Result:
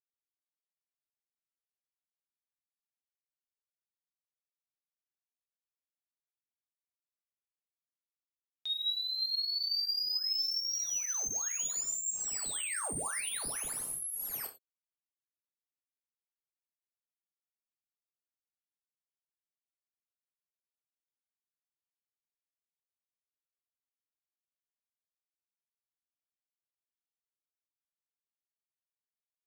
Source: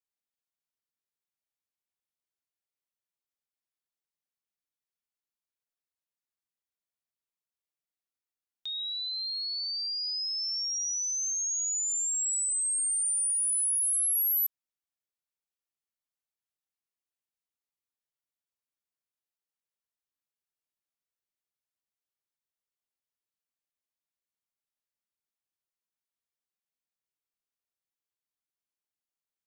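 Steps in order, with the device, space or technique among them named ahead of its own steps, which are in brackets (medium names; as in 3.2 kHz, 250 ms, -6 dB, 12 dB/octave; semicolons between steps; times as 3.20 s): early transistor amplifier (crossover distortion -57.5 dBFS; slew-rate limiter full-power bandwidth 110 Hz); gated-style reverb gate 130 ms falling, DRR 3 dB; trim -1 dB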